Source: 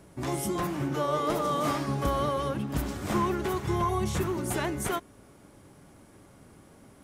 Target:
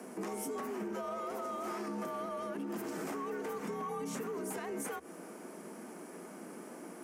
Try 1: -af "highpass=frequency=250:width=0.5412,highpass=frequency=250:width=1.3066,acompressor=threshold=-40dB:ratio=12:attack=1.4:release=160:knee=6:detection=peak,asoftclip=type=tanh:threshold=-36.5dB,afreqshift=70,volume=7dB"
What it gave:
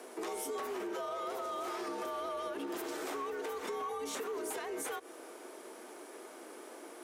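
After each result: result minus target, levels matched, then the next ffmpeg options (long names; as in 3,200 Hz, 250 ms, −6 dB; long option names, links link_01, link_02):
125 Hz band −16.0 dB; 4,000 Hz band +6.0 dB
-af "highpass=frequency=120:width=0.5412,highpass=frequency=120:width=1.3066,acompressor=threshold=-40dB:ratio=12:attack=1.4:release=160:knee=6:detection=peak,asoftclip=type=tanh:threshold=-36.5dB,afreqshift=70,volume=7dB"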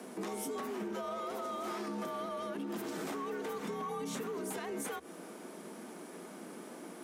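4,000 Hz band +5.0 dB
-af "highpass=frequency=120:width=0.5412,highpass=frequency=120:width=1.3066,acompressor=threshold=-40dB:ratio=12:attack=1.4:release=160:knee=6:detection=peak,equalizer=frequency=3600:width_type=o:width=0.53:gain=-10,asoftclip=type=tanh:threshold=-36.5dB,afreqshift=70,volume=7dB"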